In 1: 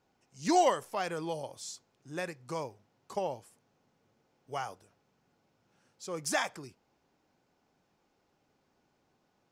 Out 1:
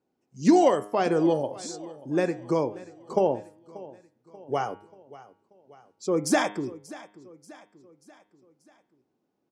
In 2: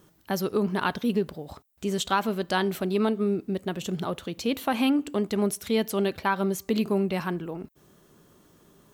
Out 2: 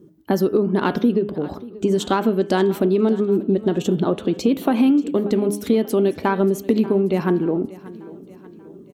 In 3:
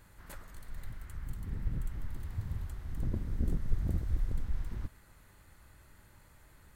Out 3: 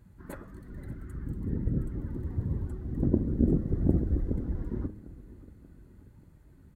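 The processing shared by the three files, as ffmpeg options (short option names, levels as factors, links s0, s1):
-filter_complex "[0:a]afftdn=nr=16:nf=-53,aeval=exprs='0.251*(cos(1*acos(clip(val(0)/0.251,-1,1)))-cos(1*PI/2))+0.00708*(cos(4*acos(clip(val(0)/0.251,-1,1)))-cos(4*PI/2))':c=same,highpass=42,equalizer=f=310:t=o:w=1.9:g=14,acompressor=threshold=0.126:ratio=6,bandreject=f=102.9:t=h:w=4,bandreject=f=205.8:t=h:w=4,bandreject=f=308.7:t=h:w=4,bandreject=f=411.6:t=h:w=4,bandreject=f=514.5:t=h:w=4,bandreject=f=617.4:t=h:w=4,bandreject=f=720.3:t=h:w=4,bandreject=f=823.2:t=h:w=4,bandreject=f=926.1:t=h:w=4,bandreject=f=1029:t=h:w=4,bandreject=f=1131.9:t=h:w=4,bandreject=f=1234.8:t=h:w=4,bandreject=f=1337.7:t=h:w=4,bandreject=f=1440.6:t=h:w=4,bandreject=f=1543.5:t=h:w=4,bandreject=f=1646.4:t=h:w=4,bandreject=f=1749.3:t=h:w=4,bandreject=f=1852.2:t=h:w=4,bandreject=f=1955.1:t=h:w=4,bandreject=f=2058:t=h:w=4,bandreject=f=2160.9:t=h:w=4,bandreject=f=2263.8:t=h:w=4,bandreject=f=2366.7:t=h:w=4,bandreject=f=2469.6:t=h:w=4,bandreject=f=2572.5:t=h:w=4,bandreject=f=2675.4:t=h:w=4,bandreject=f=2778.3:t=h:w=4,bandreject=f=2881.2:t=h:w=4,bandreject=f=2984.1:t=h:w=4,bandreject=f=3087:t=h:w=4,bandreject=f=3189.9:t=h:w=4,bandreject=f=3292.8:t=h:w=4,bandreject=f=3395.7:t=h:w=4,bandreject=f=3498.6:t=h:w=4,bandreject=f=3601.5:t=h:w=4,asplit=2[s0][s1];[s1]aecho=0:1:585|1170|1755|2340:0.112|0.0561|0.0281|0.014[s2];[s0][s2]amix=inputs=2:normalize=0,volume=1.58"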